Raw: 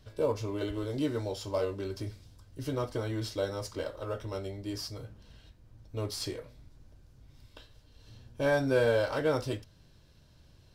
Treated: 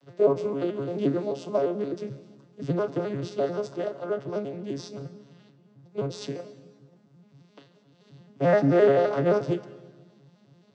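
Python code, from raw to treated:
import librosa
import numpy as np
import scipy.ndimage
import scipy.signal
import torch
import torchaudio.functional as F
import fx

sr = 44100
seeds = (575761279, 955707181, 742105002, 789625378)

y = fx.vocoder_arp(x, sr, chord='major triad', root=49, every_ms=87)
y = scipy.signal.sosfilt(scipy.signal.butter(2, 170.0, 'highpass', fs=sr, output='sos'), y)
y = fx.rev_plate(y, sr, seeds[0], rt60_s=1.4, hf_ratio=0.85, predelay_ms=115, drr_db=16.0)
y = y * librosa.db_to_amplitude(8.0)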